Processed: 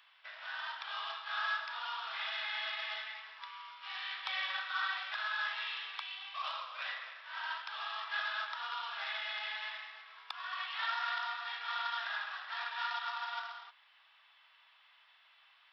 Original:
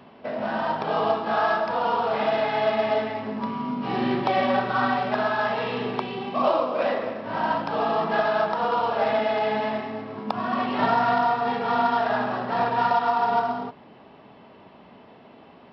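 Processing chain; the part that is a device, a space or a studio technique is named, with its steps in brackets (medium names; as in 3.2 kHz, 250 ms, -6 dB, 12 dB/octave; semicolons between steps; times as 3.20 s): headphones lying on a table (high-pass 1.4 kHz 24 dB/octave; peaking EQ 3.5 kHz +7.5 dB 0.22 oct); trim -5.5 dB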